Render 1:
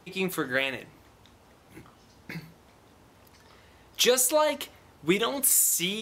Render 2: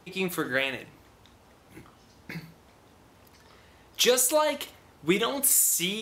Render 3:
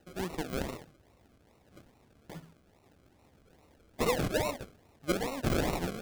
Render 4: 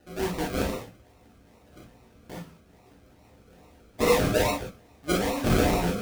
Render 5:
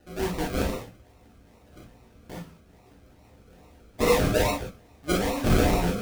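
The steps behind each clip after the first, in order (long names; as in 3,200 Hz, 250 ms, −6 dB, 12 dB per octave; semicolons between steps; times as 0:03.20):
flutter between parallel walls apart 10.6 metres, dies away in 0.26 s
sample-and-hold swept by an LFO 38×, swing 60% 2.4 Hz; level −7 dB
reverb whose tail is shaped and stops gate 80 ms flat, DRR −3.5 dB; level +2 dB
low-shelf EQ 64 Hz +7 dB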